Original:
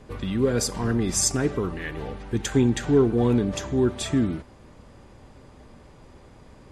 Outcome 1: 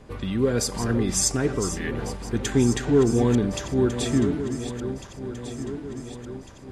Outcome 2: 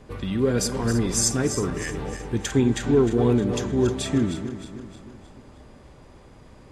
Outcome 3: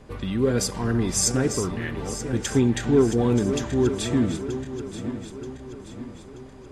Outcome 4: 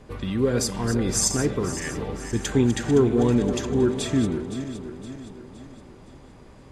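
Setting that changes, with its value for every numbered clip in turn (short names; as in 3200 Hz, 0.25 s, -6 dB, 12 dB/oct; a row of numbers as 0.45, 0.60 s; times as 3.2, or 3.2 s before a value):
regenerating reverse delay, time: 0.725, 0.155, 0.465, 0.258 s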